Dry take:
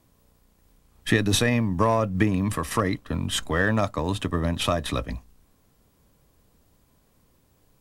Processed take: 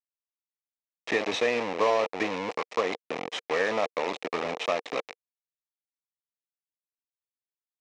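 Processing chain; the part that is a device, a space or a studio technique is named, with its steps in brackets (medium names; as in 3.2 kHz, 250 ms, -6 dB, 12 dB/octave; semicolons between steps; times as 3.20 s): hand-held game console (bit crusher 4-bit; cabinet simulation 430–4900 Hz, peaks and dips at 470 Hz +8 dB, 760 Hz +3 dB, 1.5 kHz -8 dB, 2.3 kHz +4 dB, 3.3 kHz -5 dB, 4.6 kHz -7 dB); trim -3 dB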